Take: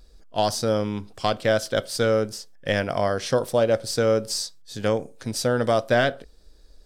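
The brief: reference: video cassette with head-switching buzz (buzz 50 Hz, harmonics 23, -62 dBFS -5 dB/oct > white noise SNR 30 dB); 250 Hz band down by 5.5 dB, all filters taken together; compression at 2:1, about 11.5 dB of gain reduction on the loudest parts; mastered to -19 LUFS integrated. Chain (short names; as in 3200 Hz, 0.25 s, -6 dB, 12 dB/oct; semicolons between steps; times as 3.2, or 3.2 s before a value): bell 250 Hz -7 dB; compressor 2:1, threshold -39 dBFS; buzz 50 Hz, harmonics 23, -62 dBFS -5 dB/oct; white noise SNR 30 dB; gain +16.5 dB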